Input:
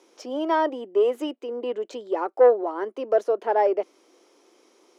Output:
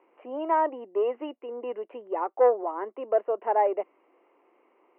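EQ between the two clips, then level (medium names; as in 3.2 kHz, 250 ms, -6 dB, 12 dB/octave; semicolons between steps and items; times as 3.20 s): rippled Chebyshev low-pass 2.9 kHz, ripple 6 dB; peaking EQ 1.1 kHz +6.5 dB 0.55 oct; -2.5 dB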